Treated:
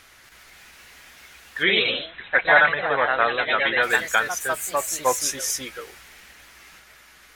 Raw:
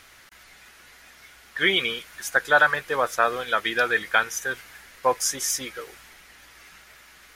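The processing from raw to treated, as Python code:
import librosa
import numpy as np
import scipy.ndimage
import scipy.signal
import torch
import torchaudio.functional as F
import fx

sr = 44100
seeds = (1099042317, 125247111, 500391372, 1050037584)

y = fx.echo_pitch(x, sr, ms=240, semitones=2, count=3, db_per_echo=-3.0)
y = fx.brickwall_lowpass(y, sr, high_hz=4100.0, at=(1.62, 3.82), fade=0.02)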